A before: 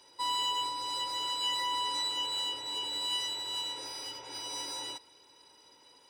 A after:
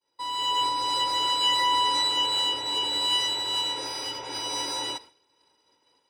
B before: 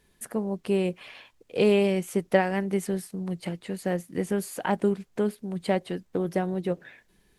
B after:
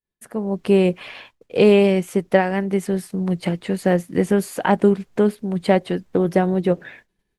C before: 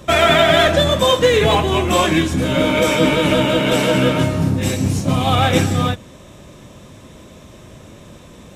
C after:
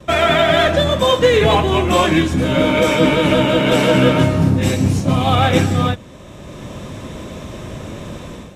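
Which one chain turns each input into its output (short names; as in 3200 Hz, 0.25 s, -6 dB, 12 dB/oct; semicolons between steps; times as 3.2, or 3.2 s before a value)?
high shelf 4900 Hz -6.5 dB; expander -50 dBFS; AGC gain up to 11.5 dB; gain -1 dB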